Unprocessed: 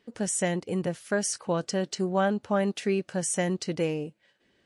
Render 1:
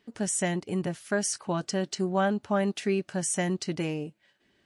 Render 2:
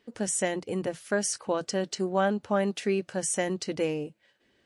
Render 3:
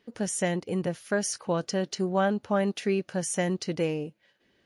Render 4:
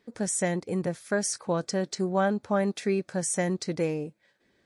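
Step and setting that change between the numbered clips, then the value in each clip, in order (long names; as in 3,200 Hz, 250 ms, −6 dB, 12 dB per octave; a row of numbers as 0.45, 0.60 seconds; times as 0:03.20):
notch filter, centre frequency: 500, 170, 7,900, 2,900 Hertz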